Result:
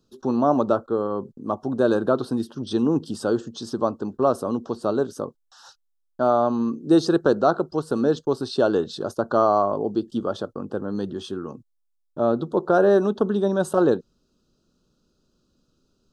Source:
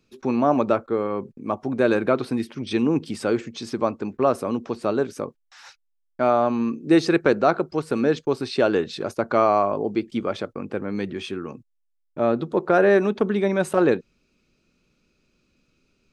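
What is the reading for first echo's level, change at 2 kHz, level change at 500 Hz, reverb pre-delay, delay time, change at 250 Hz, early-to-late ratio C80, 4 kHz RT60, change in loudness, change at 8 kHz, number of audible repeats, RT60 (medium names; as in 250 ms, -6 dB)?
no echo, -6.0 dB, 0.0 dB, no reverb, no echo, 0.0 dB, no reverb, no reverb, 0.0 dB, 0.0 dB, no echo, no reverb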